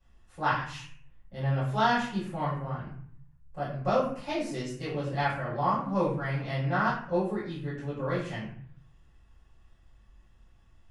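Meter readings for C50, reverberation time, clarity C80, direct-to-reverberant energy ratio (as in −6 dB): 3.5 dB, 0.55 s, 7.0 dB, −12.5 dB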